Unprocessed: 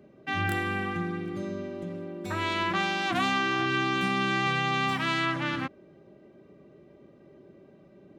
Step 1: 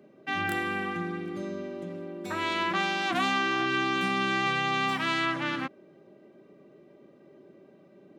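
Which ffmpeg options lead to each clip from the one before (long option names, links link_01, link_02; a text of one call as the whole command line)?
ffmpeg -i in.wav -af "highpass=180" out.wav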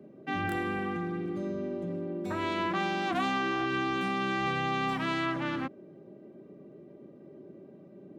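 ffmpeg -i in.wav -filter_complex "[0:a]tiltshelf=frequency=730:gain=7.5,acrossover=split=540[link_01][link_02];[link_01]alimiter=level_in=6dB:limit=-24dB:level=0:latency=1:release=11,volume=-6dB[link_03];[link_03][link_02]amix=inputs=2:normalize=0" out.wav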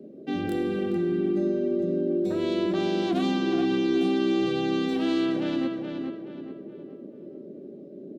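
ffmpeg -i in.wav -filter_complex "[0:a]equalizer=frequency=125:width_type=o:width=1:gain=-4,equalizer=frequency=250:width_type=o:width=1:gain=8,equalizer=frequency=500:width_type=o:width=1:gain=9,equalizer=frequency=1000:width_type=o:width=1:gain=-11,equalizer=frequency=2000:width_type=o:width=1:gain=-7,equalizer=frequency=4000:width_type=o:width=1:gain=6,asplit=2[link_01][link_02];[link_02]adelay=424,lowpass=frequency=3400:poles=1,volume=-5dB,asplit=2[link_03][link_04];[link_04]adelay=424,lowpass=frequency=3400:poles=1,volume=0.42,asplit=2[link_05][link_06];[link_06]adelay=424,lowpass=frequency=3400:poles=1,volume=0.42,asplit=2[link_07][link_08];[link_08]adelay=424,lowpass=frequency=3400:poles=1,volume=0.42,asplit=2[link_09][link_10];[link_10]adelay=424,lowpass=frequency=3400:poles=1,volume=0.42[link_11];[link_01][link_03][link_05][link_07][link_09][link_11]amix=inputs=6:normalize=0" out.wav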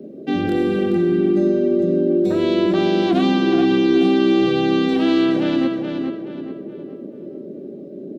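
ffmpeg -i in.wav -filter_complex "[0:a]acrossover=split=5300[link_01][link_02];[link_02]acompressor=threshold=-58dB:ratio=4:attack=1:release=60[link_03];[link_01][link_03]amix=inputs=2:normalize=0,volume=8.5dB" out.wav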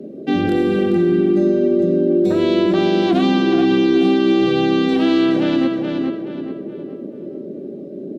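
ffmpeg -i in.wav -filter_complex "[0:a]asplit=2[link_01][link_02];[link_02]alimiter=limit=-12dB:level=0:latency=1:release=197,volume=2dB[link_03];[link_01][link_03]amix=inputs=2:normalize=0,aresample=32000,aresample=44100,volume=-4dB" out.wav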